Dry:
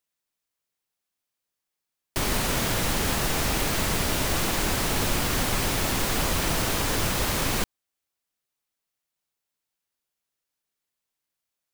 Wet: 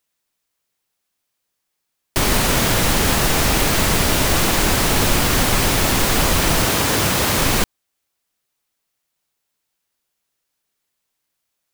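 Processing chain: 6.67–7.38 s: high-pass 77 Hz; trim +8.5 dB

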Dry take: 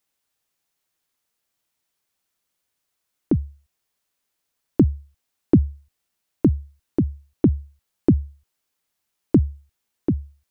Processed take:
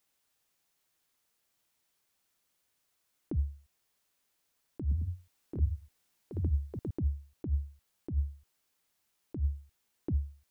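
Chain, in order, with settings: compressor with a negative ratio -25 dBFS, ratio -1; 4.81–7.05 s: ever faster or slower copies 101 ms, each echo +2 st, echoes 2; trim -6 dB

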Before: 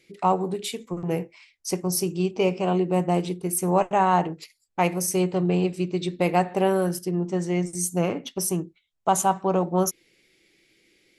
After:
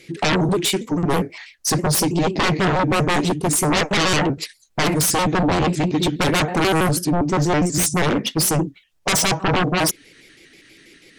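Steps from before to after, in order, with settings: pitch shift switched off and on -3 st, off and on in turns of 81 ms; sine folder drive 17 dB, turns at -8 dBFS; trim -6.5 dB

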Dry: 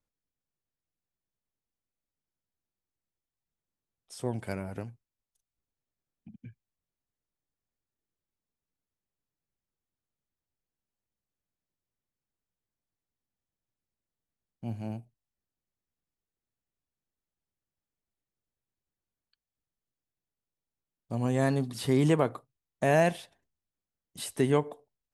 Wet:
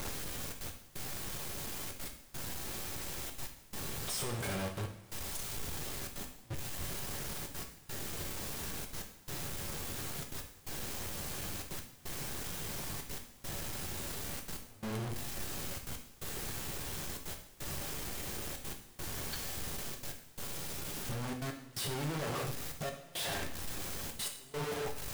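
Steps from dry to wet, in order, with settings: one-bit comparator; trance gate "xxxxxx.x...xxxxx" 173 bpm -24 dB; two-slope reverb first 0.64 s, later 3.2 s, from -21 dB, DRR 2.5 dB; trim -1.5 dB

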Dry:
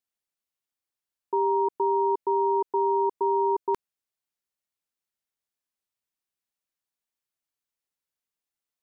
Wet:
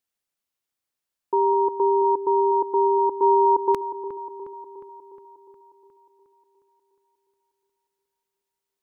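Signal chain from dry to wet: 1.53–2.02 s: comb 1.8 ms, depth 32%; 3.22–3.72 s: dynamic bell 840 Hz, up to +4 dB, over -35 dBFS, Q 1.1; on a send: feedback echo behind a low-pass 359 ms, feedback 59%, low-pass 1.3 kHz, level -11.5 dB; on the sum: trim +4 dB

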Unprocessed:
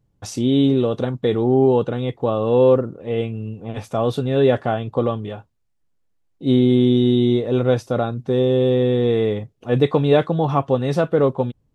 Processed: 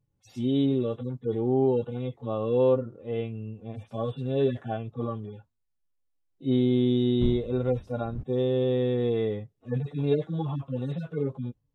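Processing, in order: harmonic-percussive separation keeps harmonic; 7.20–8.22 s: wind noise 110 Hz -31 dBFS; trim -8 dB

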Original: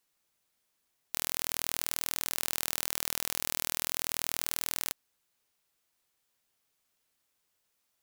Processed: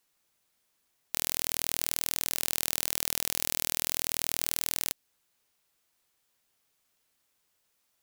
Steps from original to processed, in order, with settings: dynamic bell 1.2 kHz, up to -6 dB, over -55 dBFS, Q 1.1; trim +3 dB

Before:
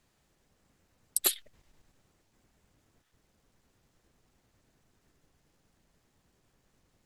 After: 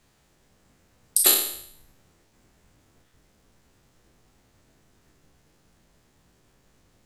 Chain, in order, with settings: spectral sustain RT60 0.68 s; trim +6 dB

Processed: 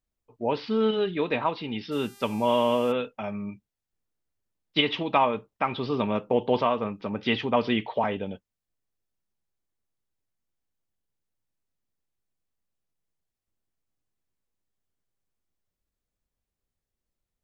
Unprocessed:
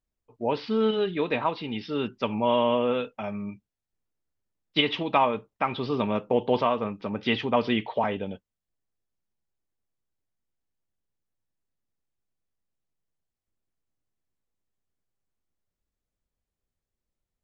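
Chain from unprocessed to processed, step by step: 1.91–2.91 s: mains buzz 400 Hz, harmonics 35, -53 dBFS -1 dB/octave

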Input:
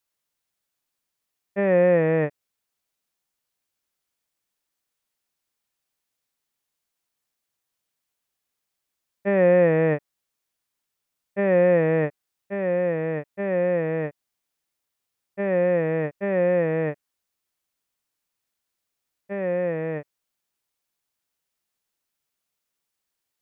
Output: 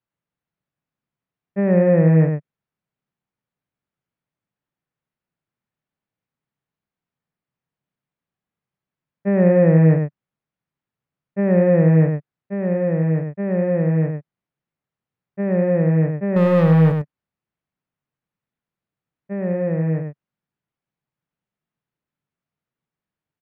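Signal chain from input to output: low-pass 2.1 kHz 12 dB/octave; peaking EQ 150 Hz +14.5 dB 1.4 oct; 16.36–16.92 s: waveshaping leveller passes 2; delay 99 ms -5.5 dB; trim -2.5 dB

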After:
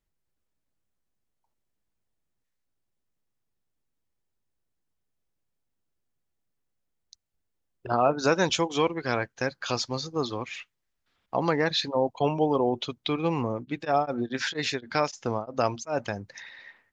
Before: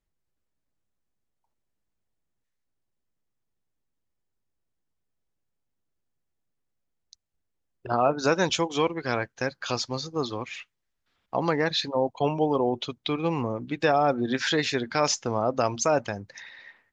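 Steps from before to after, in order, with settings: 13.54–16.03 s: tremolo of two beating tones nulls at 5.6 Hz -> 2.2 Hz

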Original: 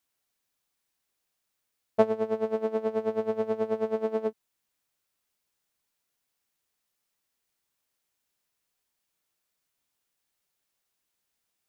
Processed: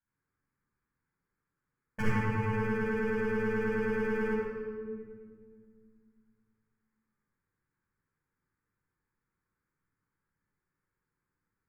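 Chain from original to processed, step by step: local Wiener filter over 15 samples; 2.00–2.50 s: graphic EQ 125/250/500/1000 Hz +11/-7/-6/+6 dB; hard clipper -23 dBFS, distortion -10 dB; static phaser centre 1.6 kHz, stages 4; reverberation RT60 1.9 s, pre-delay 38 ms, DRR -7.5 dB; trim -3 dB

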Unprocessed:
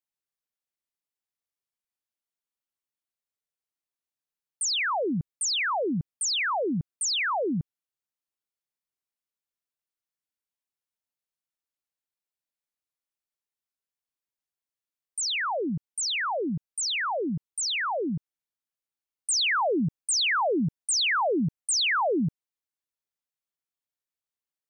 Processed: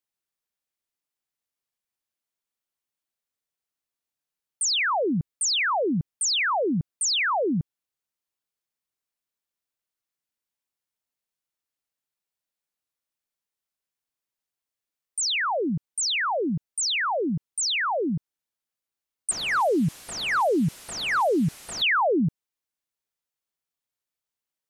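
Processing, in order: 19.31–21.82 s: one-bit delta coder 64 kbps, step -41.5 dBFS; trim +3 dB

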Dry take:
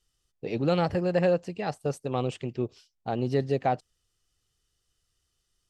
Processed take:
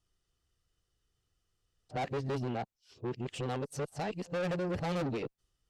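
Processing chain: reverse the whole clip; valve stage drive 31 dB, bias 0.2; tape noise reduction on one side only decoder only

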